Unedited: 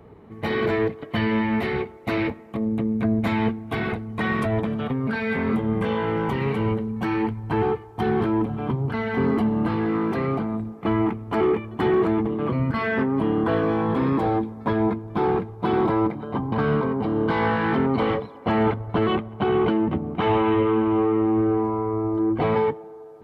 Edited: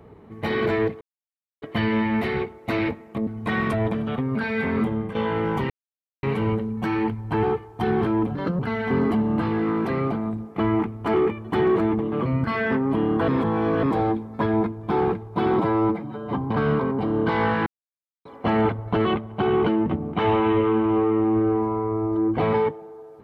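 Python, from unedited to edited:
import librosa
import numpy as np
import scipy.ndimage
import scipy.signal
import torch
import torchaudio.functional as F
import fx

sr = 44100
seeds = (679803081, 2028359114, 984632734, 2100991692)

y = fx.edit(x, sr, fx.insert_silence(at_s=1.01, length_s=0.61),
    fx.cut(start_s=2.66, length_s=1.33),
    fx.fade_out_to(start_s=5.61, length_s=0.26, floor_db=-13.0),
    fx.insert_silence(at_s=6.42, length_s=0.53),
    fx.speed_span(start_s=8.54, length_s=0.32, speed=1.32),
    fx.reverse_span(start_s=13.55, length_s=0.55),
    fx.stretch_span(start_s=15.86, length_s=0.5, factor=1.5),
    fx.silence(start_s=17.68, length_s=0.59), tone=tone)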